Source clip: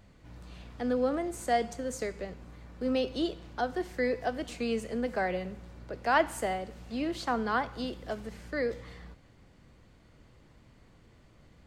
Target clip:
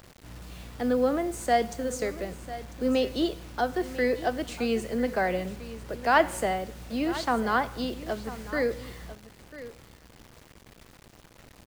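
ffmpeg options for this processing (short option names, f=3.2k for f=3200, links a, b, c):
-af "acrusher=bits=8:mix=0:aa=0.000001,aecho=1:1:996:0.178,volume=4dB"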